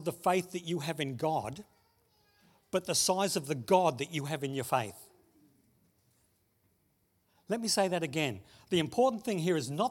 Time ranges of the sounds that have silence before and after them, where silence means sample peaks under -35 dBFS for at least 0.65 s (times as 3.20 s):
2.73–4.89 s